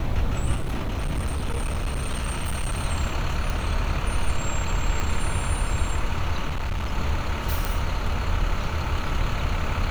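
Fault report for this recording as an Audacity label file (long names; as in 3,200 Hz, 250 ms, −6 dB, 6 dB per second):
0.550000	2.800000	clipping −22 dBFS
3.500000	3.500000	click
5.000000	5.000000	click −14 dBFS
6.470000	6.930000	clipping −23 dBFS
7.650000	7.650000	click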